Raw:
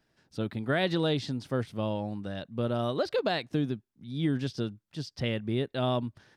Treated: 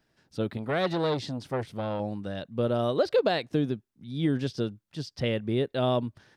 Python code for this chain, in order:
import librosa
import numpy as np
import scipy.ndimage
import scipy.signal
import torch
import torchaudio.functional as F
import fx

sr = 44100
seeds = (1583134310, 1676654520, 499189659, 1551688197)

y = fx.dynamic_eq(x, sr, hz=490.0, q=1.7, threshold_db=-42.0, ratio=4.0, max_db=5)
y = fx.transformer_sat(y, sr, knee_hz=860.0, at=(0.57, 2.0))
y = y * librosa.db_to_amplitude(1.0)